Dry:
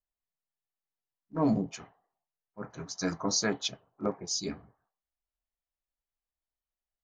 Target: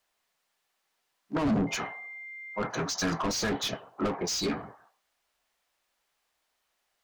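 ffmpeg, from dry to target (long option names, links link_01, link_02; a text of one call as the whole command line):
ffmpeg -i in.wav -filter_complex "[0:a]asplit=2[link_01][link_02];[link_02]highpass=frequency=720:poles=1,volume=29dB,asoftclip=type=tanh:threshold=-16dB[link_03];[link_01][link_03]amix=inputs=2:normalize=0,lowpass=frequency=3700:poles=1,volume=-6dB,asettb=1/sr,asplit=3[link_04][link_05][link_06];[link_04]atrim=end=1.674[link_07];[link_05]atrim=start=1.67:end=2.69,asetpts=PTS-STARTPTS,afade=type=in:duration=0.004:curve=qsin,afade=type=out:start_time=1.016:duration=0.004:curve=qsin,aeval=exprs='val(0)+0.01*sin(2*PI*2100*n/s)':channel_layout=same[link_08];[link_06]atrim=start=2.686[link_09];[link_07][link_08]acrossfade=duration=0.004:curve1=hsin:curve2=qsin[link_10];[link_10][link_09]acrossfade=duration=0.004:curve1=qsin:curve2=hsin,acrossover=split=260[link_11][link_12];[link_12]acompressor=threshold=-30dB:ratio=4[link_13];[link_11][link_13]amix=inputs=2:normalize=0" out.wav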